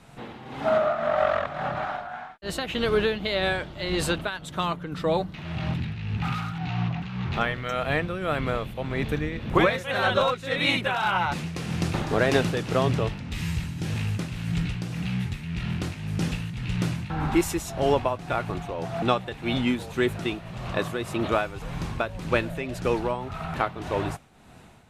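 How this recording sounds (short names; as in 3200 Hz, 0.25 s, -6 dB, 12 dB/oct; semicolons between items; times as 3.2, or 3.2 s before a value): tremolo triangle 1.8 Hz, depth 65%; MP3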